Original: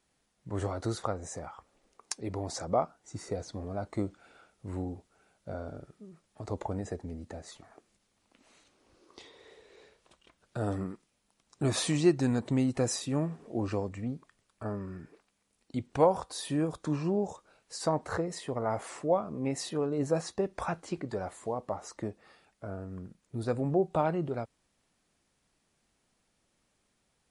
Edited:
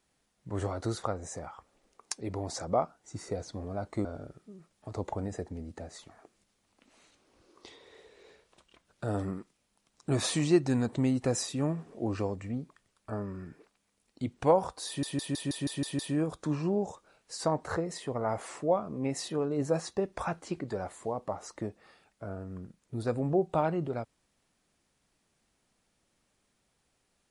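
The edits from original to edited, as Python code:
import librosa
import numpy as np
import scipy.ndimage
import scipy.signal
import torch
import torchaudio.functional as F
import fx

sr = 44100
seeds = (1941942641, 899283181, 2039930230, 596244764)

y = fx.edit(x, sr, fx.cut(start_s=4.05, length_s=1.53),
    fx.stutter(start_s=16.4, slice_s=0.16, count=8), tone=tone)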